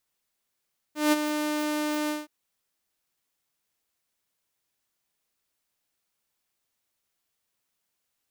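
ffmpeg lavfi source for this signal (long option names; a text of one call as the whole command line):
ffmpeg -f lavfi -i "aevalsrc='0.178*(2*mod(301*t,1)-1)':duration=1.322:sample_rate=44100,afade=type=in:duration=0.173,afade=type=out:start_time=0.173:duration=0.027:silence=0.376,afade=type=out:start_time=1.14:duration=0.182" out.wav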